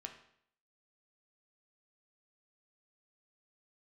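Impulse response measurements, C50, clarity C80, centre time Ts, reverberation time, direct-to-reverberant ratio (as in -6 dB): 9.0 dB, 12.0 dB, 16 ms, 0.65 s, 3.5 dB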